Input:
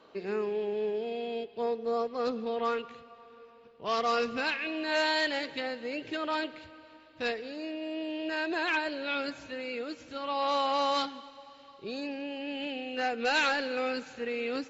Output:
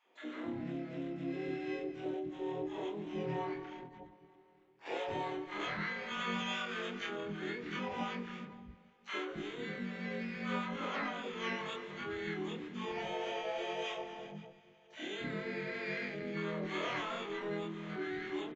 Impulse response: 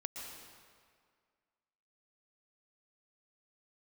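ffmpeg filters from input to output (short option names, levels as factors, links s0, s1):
-filter_complex "[0:a]afftfilt=real='re':imag='-im':win_size=2048:overlap=0.75,bandreject=f=185.8:t=h:w=4,bandreject=f=371.6:t=h:w=4,bandreject=f=557.4:t=h:w=4,bandreject=f=743.2:t=h:w=4,bandreject=f=929:t=h:w=4,bandreject=f=1114.8:t=h:w=4,bandreject=f=1300.6:t=h:w=4,bandreject=f=1486.4:t=h:w=4,bandreject=f=1672.2:t=h:w=4,bandreject=f=1858:t=h:w=4,bandreject=f=2043.8:t=h:w=4,bandreject=f=2229.6:t=h:w=4,bandreject=f=2415.4:t=h:w=4,bandreject=f=2601.2:t=h:w=4,bandreject=f=2787:t=h:w=4,bandreject=f=2972.8:t=h:w=4,agate=range=0.282:threshold=0.002:ratio=16:detection=peak,acompressor=threshold=0.01:ratio=12,asetrate=34927,aresample=44100,aresample=8000,acrusher=bits=6:mode=log:mix=0:aa=0.000001,aresample=44100,asplit=3[s0][s1][s2];[s1]asetrate=35002,aresample=44100,atempo=1.25992,volume=0.708[s3];[s2]asetrate=88200,aresample=44100,atempo=0.5,volume=0.178[s4];[s0][s3][s4]amix=inputs=3:normalize=0,acrossover=split=300|940[s5][s6][s7];[s6]adelay=60[s8];[s5]adelay=280[s9];[s9][s8][s7]amix=inputs=3:normalize=0,volume=1.78"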